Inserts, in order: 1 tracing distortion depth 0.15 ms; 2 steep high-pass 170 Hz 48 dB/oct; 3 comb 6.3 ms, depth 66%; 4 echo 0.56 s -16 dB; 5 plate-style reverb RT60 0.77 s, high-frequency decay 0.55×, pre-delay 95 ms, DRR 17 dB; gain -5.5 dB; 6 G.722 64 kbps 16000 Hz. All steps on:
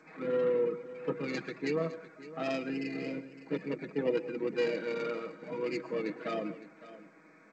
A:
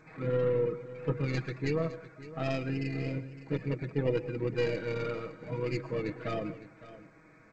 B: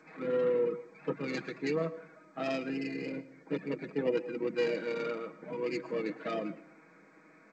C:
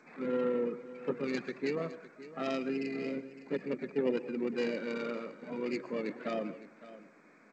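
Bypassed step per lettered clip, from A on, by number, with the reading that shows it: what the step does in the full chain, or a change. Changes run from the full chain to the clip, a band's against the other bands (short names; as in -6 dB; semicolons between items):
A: 2, 125 Hz band +13.0 dB; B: 4, momentary loudness spread change -2 LU; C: 3, 250 Hz band +2.5 dB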